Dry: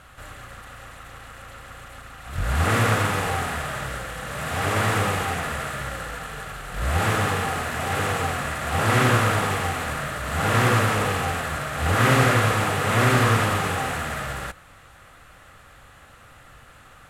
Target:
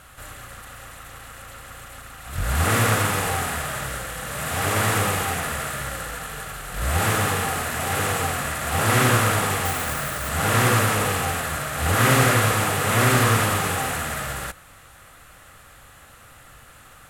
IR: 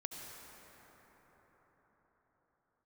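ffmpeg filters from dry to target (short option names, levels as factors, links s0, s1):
-filter_complex "[0:a]asettb=1/sr,asplit=3[s0][s1][s2];[s0]atrim=end=9.654[s3];[s1]atrim=start=9.65:end=10.29,asetpts=PTS-STARTPTS,afade=t=in:d=0.004:c=qsin,afade=t=out:st=0.636:d=0.004:c=qsin,acrusher=bits=3:mode=log:mix=0:aa=0.000001[s4];[s2]atrim=start=10.286[s5];[s3][s4]acrossfade=d=0.004:c1=hsin:c2=qsin[s6];[s6][s5]acrossfade=d=0.004:c1=qsin:c2=hsin,highshelf=f=7100:g=12"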